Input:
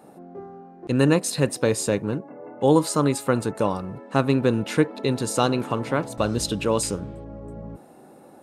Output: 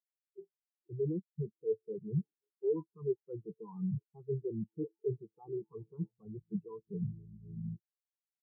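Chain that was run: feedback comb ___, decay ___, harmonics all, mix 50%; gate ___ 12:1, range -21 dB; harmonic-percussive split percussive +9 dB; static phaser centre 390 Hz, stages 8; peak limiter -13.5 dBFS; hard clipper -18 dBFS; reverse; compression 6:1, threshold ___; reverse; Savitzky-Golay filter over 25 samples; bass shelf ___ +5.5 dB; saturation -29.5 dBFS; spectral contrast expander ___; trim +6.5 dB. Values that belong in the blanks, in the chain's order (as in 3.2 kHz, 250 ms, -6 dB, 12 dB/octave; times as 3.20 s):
110 Hz, 0.32 s, -42 dBFS, -34 dBFS, 270 Hz, 4:1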